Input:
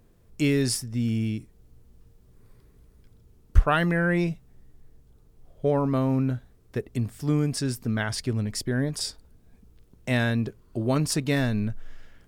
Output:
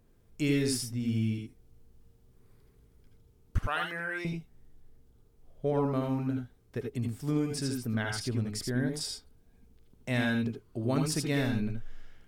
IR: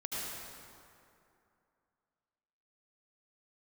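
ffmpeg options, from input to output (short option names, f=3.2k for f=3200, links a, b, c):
-filter_complex "[0:a]asettb=1/sr,asplit=3[a][b][c];[a]atrim=end=3.584[d];[b]atrim=start=3.58:end=4.25,asetpts=PTS-STARTPTS,afade=t=in:d=0.004:c=qsin,afade=t=out:st=0.666:d=0.004:c=qsin,highpass=f=1.2k:p=1[e];[c]atrim=start=4.246[f];[d][e]acrossfade=d=0.004:c1=hsin:c2=qsin[g];[g][f]acrossfade=d=0.004:c1=qsin:c2=hsin[h];[1:a]atrim=start_sample=2205,atrim=end_sample=3969[i];[h][i]afir=irnorm=-1:irlink=0,volume=-2dB"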